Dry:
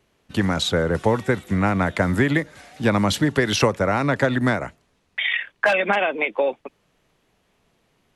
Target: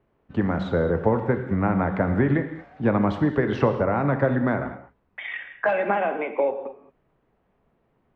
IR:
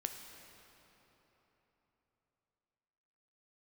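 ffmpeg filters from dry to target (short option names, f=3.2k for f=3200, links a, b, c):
-filter_complex "[0:a]lowpass=1.3k[a];[1:a]atrim=start_sample=2205,afade=t=out:st=0.28:d=0.01,atrim=end_sample=12789[b];[a][b]afir=irnorm=-1:irlink=0"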